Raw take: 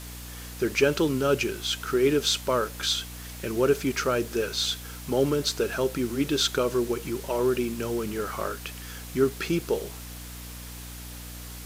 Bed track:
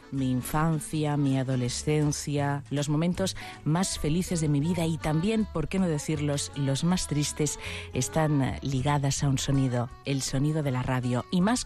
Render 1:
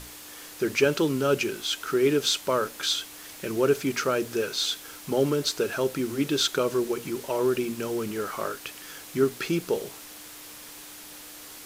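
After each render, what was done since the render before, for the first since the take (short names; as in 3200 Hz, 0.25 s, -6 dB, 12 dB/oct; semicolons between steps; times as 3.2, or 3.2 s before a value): notches 60/120/180/240 Hz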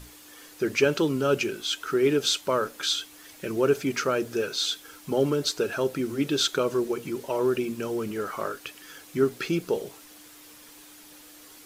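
denoiser 7 dB, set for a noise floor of -44 dBFS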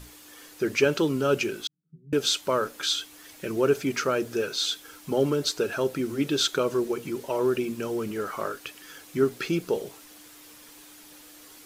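1.67–2.13 Butterworth band-pass 160 Hz, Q 6.1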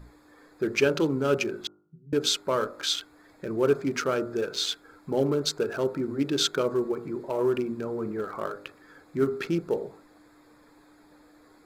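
Wiener smoothing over 15 samples; de-hum 50.61 Hz, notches 29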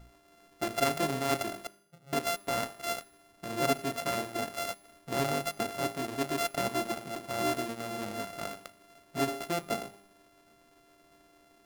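sample sorter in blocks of 64 samples; resonator 200 Hz, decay 0.78 s, harmonics all, mix 50%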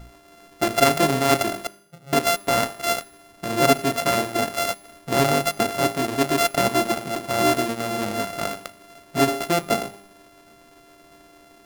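gain +11 dB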